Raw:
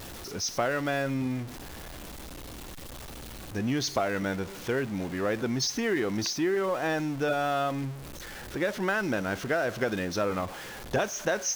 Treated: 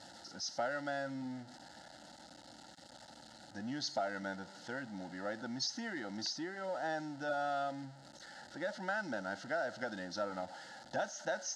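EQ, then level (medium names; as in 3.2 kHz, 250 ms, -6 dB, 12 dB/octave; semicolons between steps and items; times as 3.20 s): Butterworth band-stop 1.1 kHz, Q 2.5; cabinet simulation 360–6000 Hz, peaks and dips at 450 Hz -4 dB, 700 Hz -5 dB, 1.1 kHz -7 dB, 1.6 kHz -5 dB, 3.4 kHz -6 dB, 5.9 kHz -9 dB; static phaser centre 1 kHz, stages 4; +1.0 dB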